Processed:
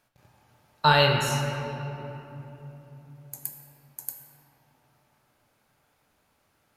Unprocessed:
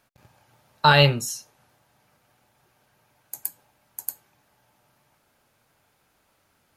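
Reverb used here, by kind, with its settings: shoebox room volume 200 m³, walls hard, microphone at 0.4 m; gain -4.5 dB

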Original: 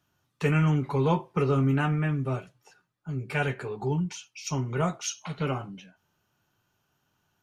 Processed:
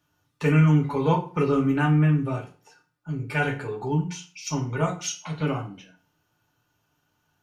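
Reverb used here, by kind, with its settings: FDN reverb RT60 0.39 s, low-frequency decay 1.1×, high-frequency decay 0.85×, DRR 2.5 dB

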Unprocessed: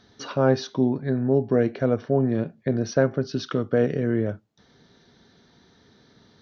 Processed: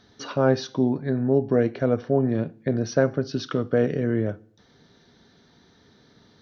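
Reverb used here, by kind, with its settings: FDN reverb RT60 0.58 s, low-frequency decay 1.2×, high-frequency decay 0.95×, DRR 18.5 dB

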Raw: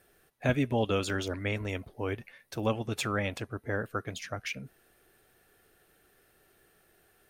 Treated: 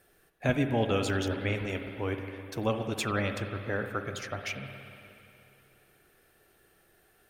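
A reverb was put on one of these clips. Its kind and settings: spring tank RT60 2.9 s, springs 52/59 ms, chirp 40 ms, DRR 6 dB

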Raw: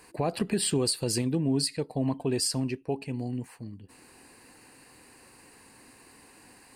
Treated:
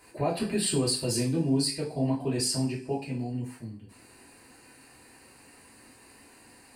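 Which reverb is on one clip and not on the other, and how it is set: two-slope reverb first 0.36 s, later 1.8 s, from -27 dB, DRR -5.5 dB; gain -6 dB

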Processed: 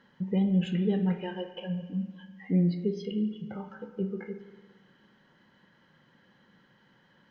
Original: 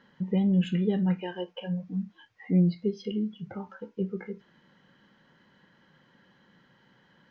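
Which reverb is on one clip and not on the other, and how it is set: spring tank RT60 1.5 s, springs 42/57 ms, chirp 45 ms, DRR 9 dB; gain -1.5 dB

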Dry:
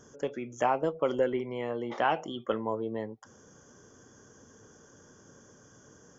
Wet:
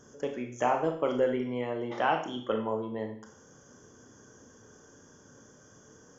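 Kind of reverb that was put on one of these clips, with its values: Schroeder reverb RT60 0.52 s, combs from 25 ms, DRR 3.5 dB; gain -1 dB

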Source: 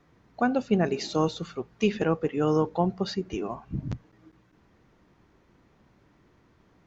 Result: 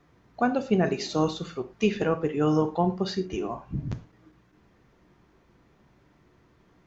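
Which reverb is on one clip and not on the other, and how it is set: non-linear reverb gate 0.14 s falling, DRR 7 dB

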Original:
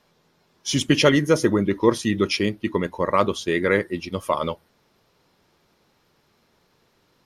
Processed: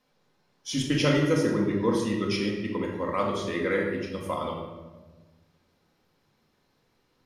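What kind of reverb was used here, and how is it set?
shoebox room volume 850 m³, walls mixed, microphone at 2 m; gain -10.5 dB

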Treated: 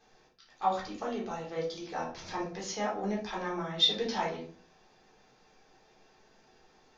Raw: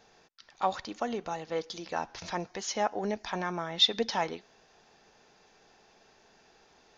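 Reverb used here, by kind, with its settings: shoebox room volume 390 m³, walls furnished, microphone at 3.8 m; gain -8.5 dB

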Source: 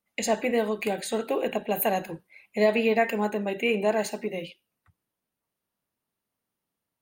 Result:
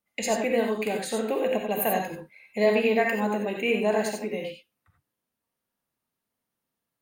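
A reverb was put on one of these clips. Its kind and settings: non-linear reverb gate 0.11 s rising, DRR 2 dB; gain -1.5 dB

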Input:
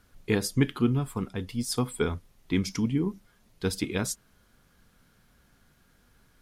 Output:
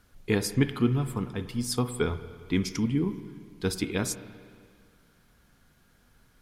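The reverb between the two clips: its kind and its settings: spring tank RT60 2 s, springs 49/57 ms, chirp 35 ms, DRR 11.5 dB

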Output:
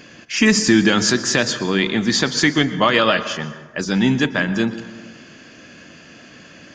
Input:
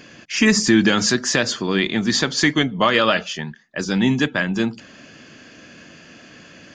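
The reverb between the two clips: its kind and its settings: plate-style reverb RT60 1.4 s, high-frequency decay 0.5×, pre-delay 0.105 s, DRR 12.5 dB; gain +1 dB

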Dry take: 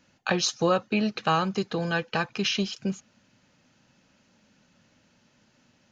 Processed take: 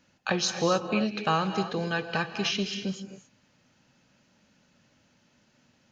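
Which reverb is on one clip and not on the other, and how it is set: non-linear reverb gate 0.3 s rising, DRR 7.5 dB; gain -2 dB

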